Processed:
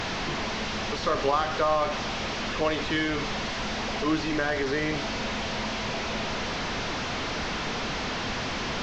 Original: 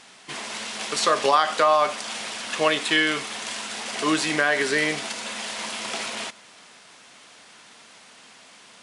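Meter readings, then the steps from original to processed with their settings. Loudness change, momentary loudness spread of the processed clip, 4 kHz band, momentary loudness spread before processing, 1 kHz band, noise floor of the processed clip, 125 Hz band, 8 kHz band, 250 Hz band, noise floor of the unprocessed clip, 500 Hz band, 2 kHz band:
−4.5 dB, 5 LU, −3.0 dB, 12 LU, −4.0 dB, −32 dBFS, +8.5 dB, −8.0 dB, +1.0 dB, −50 dBFS, −2.5 dB, −4.5 dB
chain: linear delta modulator 32 kbit/s, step −16.5 dBFS
spectral tilt −2.5 dB per octave
level −6.5 dB

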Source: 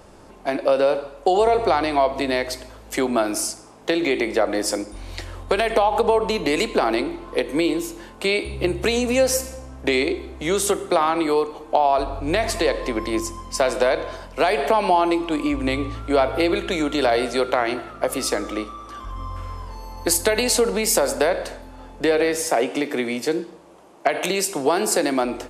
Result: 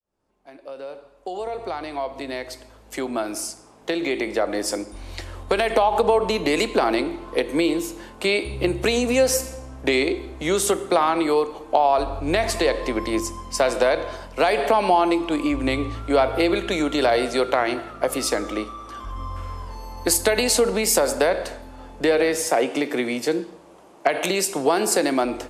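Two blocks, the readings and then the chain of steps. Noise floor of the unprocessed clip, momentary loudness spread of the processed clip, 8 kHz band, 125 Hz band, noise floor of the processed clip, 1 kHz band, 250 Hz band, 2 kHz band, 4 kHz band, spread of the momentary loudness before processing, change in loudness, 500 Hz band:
−44 dBFS, 15 LU, −0.5 dB, −0.5 dB, −49 dBFS, −1.0 dB, −0.5 dB, −0.5 dB, −0.5 dB, 11 LU, −0.5 dB, −1.0 dB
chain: fade in at the beginning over 5.98 s

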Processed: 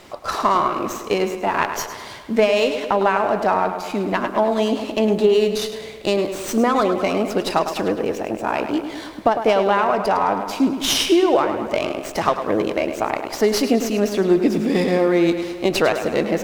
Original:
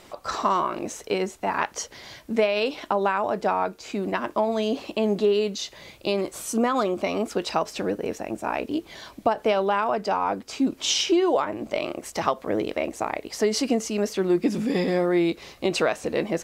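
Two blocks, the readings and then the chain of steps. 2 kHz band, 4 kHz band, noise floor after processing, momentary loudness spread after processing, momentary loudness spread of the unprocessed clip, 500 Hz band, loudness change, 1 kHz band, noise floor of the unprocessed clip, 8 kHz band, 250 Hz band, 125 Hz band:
+5.5 dB, +4.5 dB, −34 dBFS, 8 LU, 8 LU, +6.0 dB, +5.5 dB, +6.0 dB, −51 dBFS, +2.5 dB, +5.5 dB, +5.5 dB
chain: tape delay 104 ms, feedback 68%, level −8 dB, low-pass 4,200 Hz
windowed peak hold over 3 samples
level +5 dB

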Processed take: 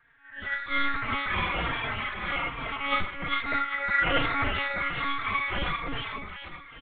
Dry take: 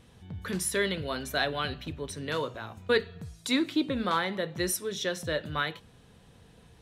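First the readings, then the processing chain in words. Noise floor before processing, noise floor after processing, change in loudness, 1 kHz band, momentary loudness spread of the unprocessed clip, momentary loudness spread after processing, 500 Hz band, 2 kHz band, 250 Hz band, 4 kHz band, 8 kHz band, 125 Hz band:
−57 dBFS, −48 dBFS, +2.5 dB, +6.5 dB, 10 LU, 11 LU, −6.5 dB, +7.0 dB, −5.5 dB, +0.5 dB, below −40 dB, 0.0 dB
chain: random phases in long frames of 200 ms
ring modulation 1,700 Hz
noise reduction from a noise print of the clip's start 8 dB
in parallel at −7.5 dB: soft clipping −30.5 dBFS, distortion −9 dB
on the sum: high-frequency loss of the air 260 metres
echo with a time of its own for lows and highs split 870 Hz, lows 298 ms, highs 399 ms, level −4 dB
one-pitch LPC vocoder at 8 kHz 280 Hz
barber-pole flanger 3.8 ms −1.2 Hz
level +7.5 dB

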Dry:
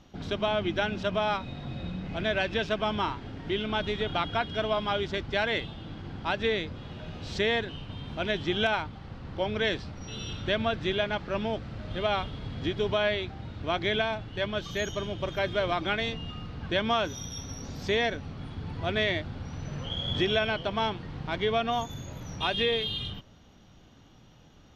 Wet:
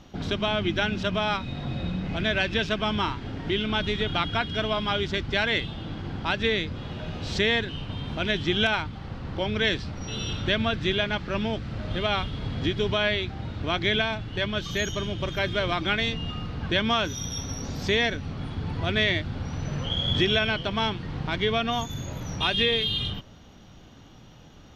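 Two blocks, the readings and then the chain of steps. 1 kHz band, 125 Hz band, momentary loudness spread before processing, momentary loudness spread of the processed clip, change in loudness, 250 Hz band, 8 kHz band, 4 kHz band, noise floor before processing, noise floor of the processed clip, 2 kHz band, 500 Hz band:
+1.0 dB, +5.5 dB, 12 LU, 10 LU, +3.5 dB, +4.5 dB, can't be measured, +5.5 dB, −55 dBFS, −49 dBFS, +4.5 dB, +0.5 dB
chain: dynamic equaliser 660 Hz, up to −7 dB, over −41 dBFS, Q 0.77
level +6 dB

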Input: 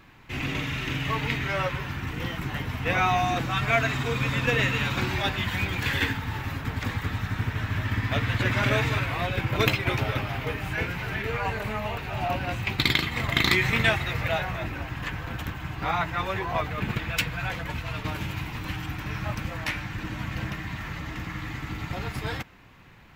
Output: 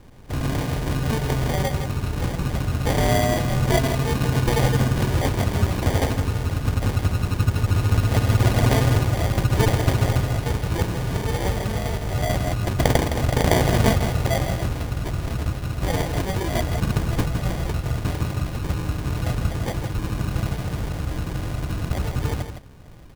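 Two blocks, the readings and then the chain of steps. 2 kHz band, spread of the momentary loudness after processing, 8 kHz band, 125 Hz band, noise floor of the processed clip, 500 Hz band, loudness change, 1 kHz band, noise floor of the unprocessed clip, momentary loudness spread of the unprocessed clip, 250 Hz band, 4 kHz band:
−4.5 dB, 8 LU, +9.5 dB, +8.5 dB, −31 dBFS, +6.5 dB, +4.5 dB, +1.5 dB, −38 dBFS, 10 LU, +7.0 dB, −1.0 dB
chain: low-shelf EQ 120 Hz +11 dB
decimation without filtering 33×
on a send: single-tap delay 163 ms −8.5 dB
on the sum: level +2 dB

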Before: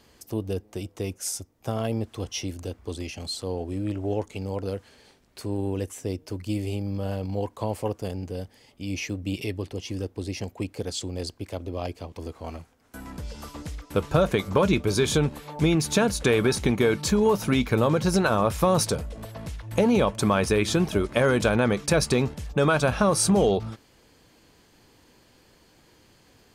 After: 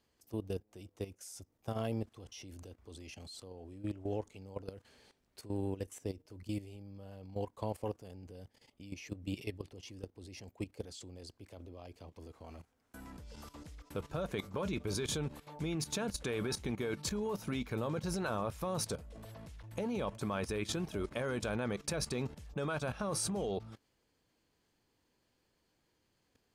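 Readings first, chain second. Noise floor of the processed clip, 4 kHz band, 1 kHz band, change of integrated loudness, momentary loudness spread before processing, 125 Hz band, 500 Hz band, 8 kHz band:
−78 dBFS, −12.5 dB, −15.0 dB, −13.5 dB, 16 LU, −14.0 dB, −15.0 dB, −12.0 dB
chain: output level in coarse steps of 14 dB
level −7.5 dB

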